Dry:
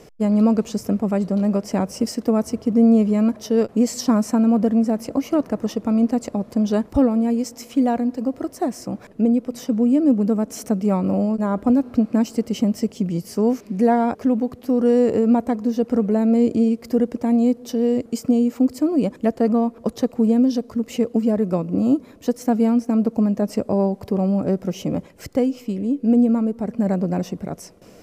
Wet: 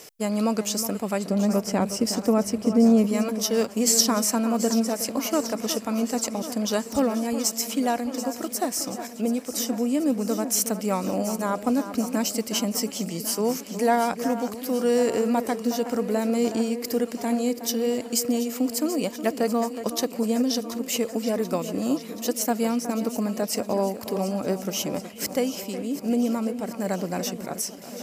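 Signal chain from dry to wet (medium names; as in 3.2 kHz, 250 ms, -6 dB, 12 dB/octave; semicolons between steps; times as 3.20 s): tilt EQ +4 dB/octave, from 1.29 s +1.5 dB/octave, from 3.06 s +4 dB/octave; echo whose repeats swap between lows and highs 366 ms, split 2.4 kHz, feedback 80%, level -11 dB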